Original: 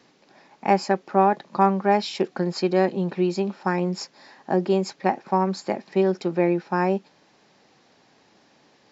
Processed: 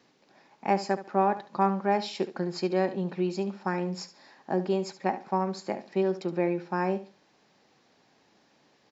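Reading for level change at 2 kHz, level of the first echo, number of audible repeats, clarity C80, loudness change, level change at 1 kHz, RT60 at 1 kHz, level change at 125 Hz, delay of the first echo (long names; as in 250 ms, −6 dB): −6.0 dB, −13.5 dB, 2, no reverb audible, −6.0 dB, −6.0 dB, no reverb audible, −6.0 dB, 71 ms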